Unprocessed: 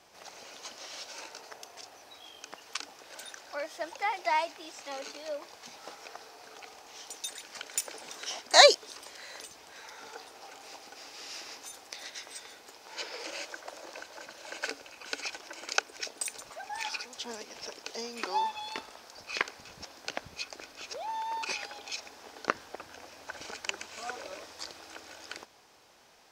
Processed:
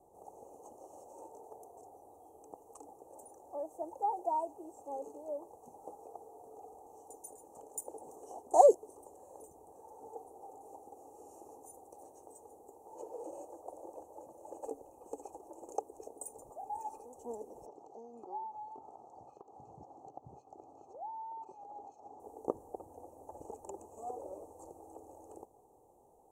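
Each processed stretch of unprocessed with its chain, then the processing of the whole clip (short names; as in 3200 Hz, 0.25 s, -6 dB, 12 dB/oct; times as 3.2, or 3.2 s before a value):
17.66–22.2 compressor 3:1, threshold -45 dBFS + speaker cabinet 110–6200 Hz, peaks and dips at 130 Hz +7 dB, 490 Hz -5 dB, 780 Hz +6 dB, 1300 Hz +6 dB, 1900 Hz -9 dB, 4200 Hz +7 dB
whole clip: inverse Chebyshev band-stop 1400–5200 Hz, stop band 40 dB; high shelf 5500 Hz -9.5 dB; comb 2.4 ms, depth 37%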